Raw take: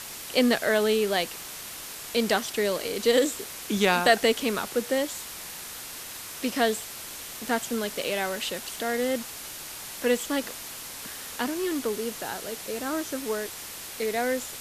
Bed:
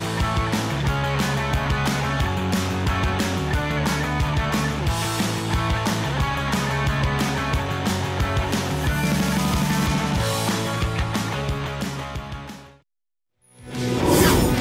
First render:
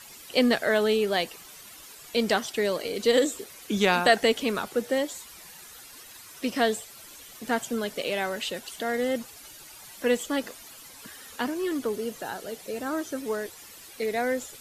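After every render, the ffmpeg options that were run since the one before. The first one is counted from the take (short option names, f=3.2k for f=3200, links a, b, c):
-af "afftdn=nr=12:nf=-40"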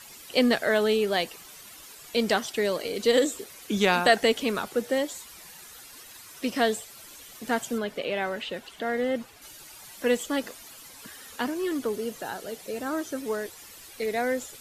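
-filter_complex "[0:a]asettb=1/sr,asplit=3[a][b][c];[a]atrim=end=7.784[d];[b]atrim=start=7.78:end=9.42,asetpts=PTS-STARTPTS,afade=t=in:d=0.004:c=qsin,afade=t=out:st=1.636:d=0.004:c=qsin,acrossover=split=3600[e][f];[f]acompressor=threshold=-54dB:ratio=4:attack=1:release=60[g];[e][g]amix=inputs=2:normalize=0[h];[c]atrim=start=9.416[i];[d][h]acrossfade=d=0.004:c1=hsin:c2=qsin[j];[j][i]acrossfade=d=0.004:c1=qsin:c2=hsin,asettb=1/sr,asplit=3[k][l][m];[k]atrim=end=13.494[n];[l]atrim=start=13.49:end=14.07,asetpts=PTS-STARTPTS,afade=t=in:d=0.004:c=qsin,afade=t=out:st=0.576:d=0.004:c=qsin,asubboost=boost=9:cutoff=110[o];[m]atrim=start=14.066[p];[n][o]acrossfade=d=0.004:c1=hsin:c2=qsin[q];[q][p]acrossfade=d=0.004:c1=qsin:c2=hsin"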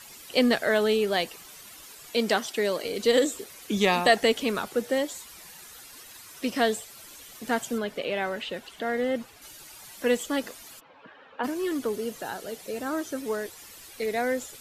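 -filter_complex "[0:a]asettb=1/sr,asplit=3[a][b][c];[a]atrim=end=2.114[d];[b]atrim=start=2.11:end=2.84,asetpts=PTS-STARTPTS,afade=t=in:d=0.004:c=qsin,afade=t=out:st=0.726:d=0.004:c=qsin,highpass=160[e];[c]atrim=start=2.836[f];[d][e]acrossfade=d=0.004:c1=hsin:c2=qsin[g];[g][f]acrossfade=d=0.004:c1=qsin:c2=hsin,asettb=1/sr,asplit=3[h][i][j];[h]atrim=end=3.744[k];[i]atrim=start=3.74:end=4.18,asetpts=PTS-STARTPTS,afade=t=in:d=0.004:c=qsin,afade=t=out:st=0.436:d=0.004:c=qsin,asuperstop=centerf=1500:order=8:qfactor=6.3[l];[j]atrim=start=4.176[m];[k][l]acrossfade=d=0.004:c1=hsin:c2=qsin[n];[n][m]acrossfade=d=0.004:c1=qsin:c2=hsin,asplit=3[o][p][q];[o]afade=t=out:st=10.79:d=0.02[r];[p]highpass=180,equalizer=f=220:t=q:w=4:g=-6,equalizer=f=360:t=q:w=4:g=-3,equalizer=f=550:t=q:w=4:g=6,equalizer=f=860:t=q:w=4:g=3,equalizer=f=2k:t=q:w=4:g=-8,lowpass=f=2.5k:w=0.5412,lowpass=f=2.5k:w=1.3066,afade=t=in:st=10.79:d=0.02,afade=t=out:st=11.43:d=0.02[s];[q]afade=t=in:st=11.43:d=0.02[t];[r][s][t]amix=inputs=3:normalize=0"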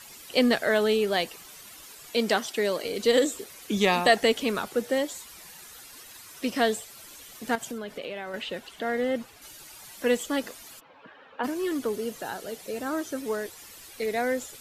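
-filter_complex "[0:a]asettb=1/sr,asplit=3[a][b][c];[a]atrim=end=7.554[d];[b]atrim=start=7.55:end=8.34,asetpts=PTS-STARTPTS,afade=t=in:d=0.004:c=qsin,afade=t=out:st=0.786:d=0.004:c=qsin,acompressor=threshold=-31dB:ratio=6:attack=3.2:release=140:knee=1:detection=peak[e];[c]atrim=start=8.336[f];[d][e]acrossfade=d=0.004:c1=hsin:c2=qsin[g];[g][f]acrossfade=d=0.004:c1=qsin:c2=hsin"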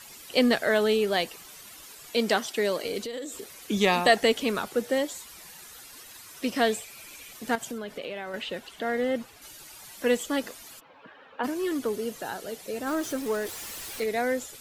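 -filter_complex "[0:a]asettb=1/sr,asplit=3[a][b][c];[a]atrim=end=2.994[d];[b]atrim=start=2.99:end=3.54,asetpts=PTS-STARTPTS,afade=t=in:d=0.004:c=qsin,afade=t=out:st=0.546:d=0.004:c=qsin,acompressor=threshold=-33dB:ratio=6:attack=3.2:release=140:knee=1:detection=peak[e];[c]atrim=start=3.536[f];[d][e]acrossfade=d=0.004:c1=hsin:c2=qsin[g];[g][f]acrossfade=d=0.004:c1=qsin:c2=hsin,asettb=1/sr,asplit=3[h][i][j];[h]atrim=end=6.664[k];[i]atrim=start=6.66:end=7.33,asetpts=PTS-STARTPTS,afade=t=in:d=0.004:c=qsin,afade=t=out:st=0.666:d=0.004:c=qsin,equalizer=f=2.4k:w=6.7:g=12.5[l];[j]atrim=start=7.326[m];[k][l]acrossfade=d=0.004:c1=hsin:c2=qsin[n];[n][m]acrossfade=d=0.004:c1=qsin:c2=hsin,asettb=1/sr,asplit=3[o][p][q];[o]atrim=end=12.874[r];[p]atrim=start=12.87:end=14.04,asetpts=PTS-STARTPTS,afade=t=in:d=0.004:c=qsin,afade=t=out:st=1.166:d=0.004:c=qsin,aeval=exprs='val(0)+0.5*0.015*sgn(val(0))':c=same[s];[q]atrim=start=14.036[t];[r][s]acrossfade=d=0.004:c1=hsin:c2=qsin[u];[u][t]acrossfade=d=0.004:c1=qsin:c2=hsin"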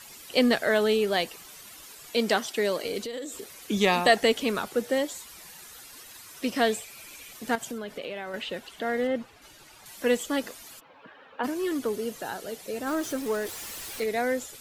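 -filter_complex "[0:a]asettb=1/sr,asplit=3[a][b][c];[a]atrim=end=9.074[d];[b]atrim=start=9.07:end=9.86,asetpts=PTS-STARTPTS,afade=t=in:d=0.004:c=qsin,afade=t=out:st=0.786:d=0.004:c=qsin,lowpass=f=3.2k:p=1[e];[c]atrim=start=9.856[f];[d][e]acrossfade=d=0.004:c1=hsin:c2=qsin[g];[g][f]acrossfade=d=0.004:c1=qsin:c2=hsin"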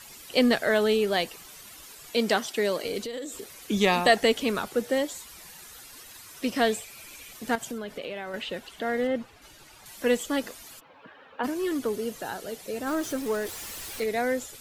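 -af "lowshelf=f=94:g=5.5"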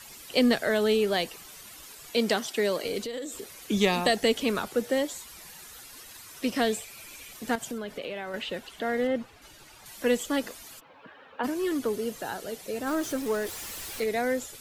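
-filter_complex "[0:a]acrossover=split=470|3000[a][b][c];[b]acompressor=threshold=-26dB:ratio=6[d];[a][d][c]amix=inputs=3:normalize=0"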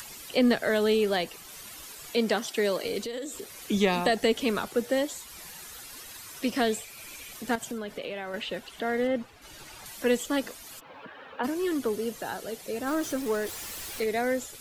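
-filter_complex "[0:a]acrossover=split=2600[a][b];[b]alimiter=level_in=1dB:limit=-24dB:level=0:latency=1:release=153,volume=-1dB[c];[a][c]amix=inputs=2:normalize=0,acompressor=mode=upward:threshold=-38dB:ratio=2.5"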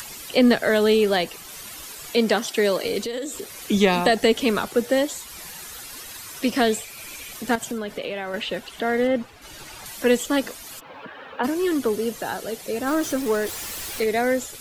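-af "volume=6dB"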